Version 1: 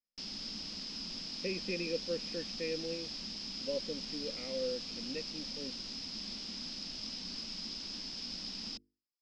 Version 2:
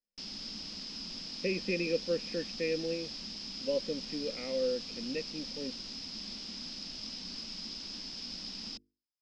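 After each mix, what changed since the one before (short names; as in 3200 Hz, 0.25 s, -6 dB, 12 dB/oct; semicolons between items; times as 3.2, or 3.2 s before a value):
speech +5.0 dB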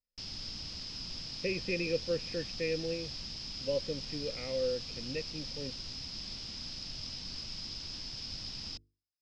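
master: add resonant low shelf 160 Hz +8.5 dB, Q 3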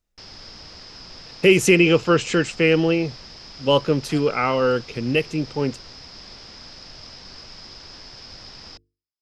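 speech: remove vocal tract filter e; master: add band shelf 860 Hz +10 dB 2.8 oct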